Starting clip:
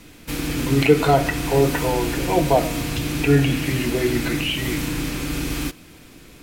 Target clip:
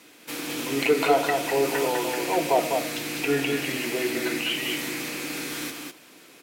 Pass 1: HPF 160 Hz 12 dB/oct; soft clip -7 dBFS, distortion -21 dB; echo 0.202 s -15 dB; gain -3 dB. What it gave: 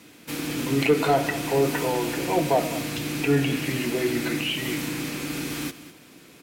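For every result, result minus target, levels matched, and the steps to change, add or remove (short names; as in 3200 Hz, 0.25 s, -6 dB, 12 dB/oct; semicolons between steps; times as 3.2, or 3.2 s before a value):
125 Hz band +10.0 dB; echo-to-direct -10.5 dB
change: HPF 360 Hz 12 dB/oct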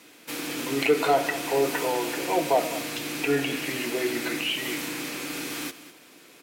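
echo-to-direct -10.5 dB
change: echo 0.202 s -4.5 dB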